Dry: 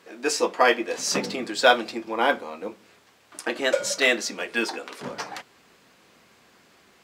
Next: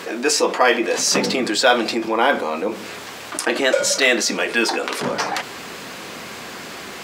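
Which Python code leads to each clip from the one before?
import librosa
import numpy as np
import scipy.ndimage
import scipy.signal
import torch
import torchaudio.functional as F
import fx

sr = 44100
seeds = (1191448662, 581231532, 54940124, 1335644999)

y = fx.low_shelf(x, sr, hz=96.0, db=-6.5)
y = fx.env_flatten(y, sr, amount_pct=50)
y = y * librosa.db_to_amplitude(1.5)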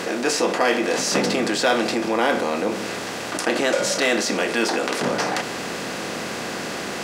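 y = fx.bin_compress(x, sr, power=0.6)
y = fx.low_shelf(y, sr, hz=300.0, db=8.5)
y = y * librosa.db_to_amplitude(-8.0)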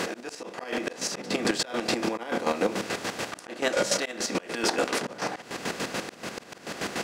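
y = fx.chopper(x, sr, hz=6.9, depth_pct=65, duty_pct=40)
y = fx.auto_swell(y, sr, attack_ms=285.0)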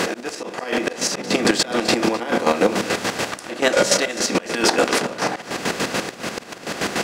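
y = x + 10.0 ** (-16.0 / 20.0) * np.pad(x, (int(256 * sr / 1000.0), 0))[:len(x)]
y = y * librosa.db_to_amplitude(8.5)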